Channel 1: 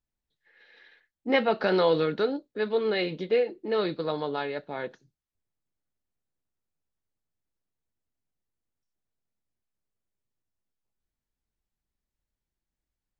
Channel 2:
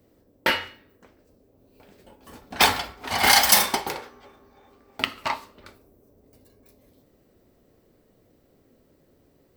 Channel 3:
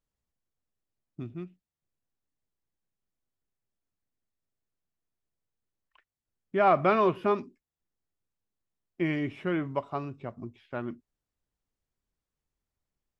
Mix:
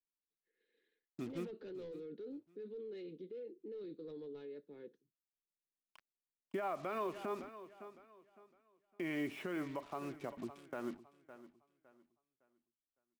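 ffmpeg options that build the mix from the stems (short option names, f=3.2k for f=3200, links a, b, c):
-filter_complex "[0:a]acrossover=split=220 2400:gain=0.141 1 0.178[a][b][c];[a][b][c]amix=inputs=3:normalize=0,asoftclip=type=tanh:threshold=-20.5dB,firequalizer=gain_entry='entry(450,0);entry(640,-24);entry(3600,-4)':delay=0.05:min_phase=1,volume=-11dB[d];[2:a]highpass=250,acompressor=threshold=-34dB:ratio=3,acrusher=bits=8:mix=0:aa=0.5,volume=-0.5dB,asplit=2[e][f];[f]volume=-17.5dB[g];[d]alimiter=level_in=17.5dB:limit=-24dB:level=0:latency=1:release=11,volume=-17.5dB,volume=0dB[h];[g]aecho=0:1:559|1118|1677|2236:1|0.29|0.0841|0.0244[i];[e][h][i]amix=inputs=3:normalize=0,alimiter=level_in=6.5dB:limit=-24dB:level=0:latency=1:release=89,volume=-6.5dB"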